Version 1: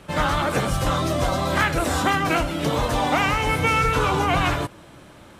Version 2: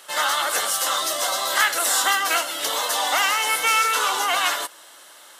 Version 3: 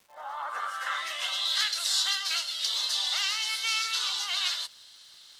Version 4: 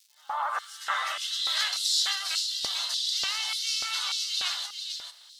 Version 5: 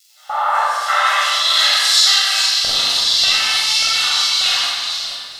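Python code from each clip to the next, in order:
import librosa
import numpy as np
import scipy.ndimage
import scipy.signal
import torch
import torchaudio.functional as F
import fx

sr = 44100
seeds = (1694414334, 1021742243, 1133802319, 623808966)

y1 = scipy.signal.sosfilt(scipy.signal.butter(2, 520.0, 'highpass', fs=sr, output='sos'), x)
y1 = fx.tilt_eq(y1, sr, slope=4.0)
y1 = fx.notch(y1, sr, hz=2400.0, q=5.7)
y2 = fx.fade_in_head(y1, sr, length_s=1.12)
y2 = fx.filter_sweep_bandpass(y2, sr, from_hz=740.0, to_hz=4300.0, start_s=0.21, end_s=1.62, q=3.5)
y2 = fx.dmg_crackle(y2, sr, seeds[0], per_s=470.0, level_db=-54.0)
y2 = y2 * librosa.db_to_amplitude(3.5)
y3 = fx.rider(y2, sr, range_db=5, speed_s=2.0)
y3 = y3 + 10.0 ** (-6.5 / 20.0) * np.pad(y3, (int(444 * sr / 1000.0), 0))[:len(y3)]
y3 = fx.filter_lfo_highpass(y3, sr, shape='square', hz=1.7, low_hz=710.0, high_hz=4400.0, q=1.5)
y3 = y3 * librosa.db_to_amplitude(-1.5)
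y4 = fx.doubler(y3, sr, ms=46.0, db=-3.5)
y4 = fx.room_shoebox(y4, sr, seeds[1], volume_m3=4000.0, walls='mixed', distance_m=6.8)
y4 = y4 * librosa.db_to_amplitude(5.0)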